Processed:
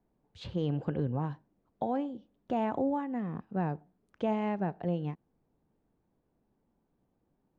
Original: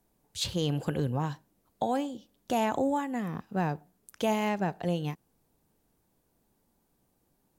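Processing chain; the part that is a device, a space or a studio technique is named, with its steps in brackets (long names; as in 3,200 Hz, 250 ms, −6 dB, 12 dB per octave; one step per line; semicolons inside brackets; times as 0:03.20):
phone in a pocket (low-pass filter 3,200 Hz 12 dB per octave; parametric band 250 Hz +2.5 dB 2.2 octaves; high-shelf EQ 2,200 Hz −10 dB)
level −3.5 dB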